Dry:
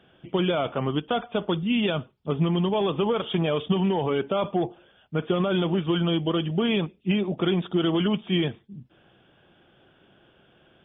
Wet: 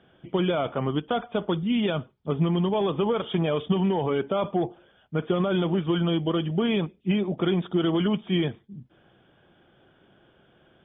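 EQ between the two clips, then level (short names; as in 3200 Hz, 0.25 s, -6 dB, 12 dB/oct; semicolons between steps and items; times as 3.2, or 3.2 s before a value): air absorption 140 m; notch 2700 Hz, Q 13; 0.0 dB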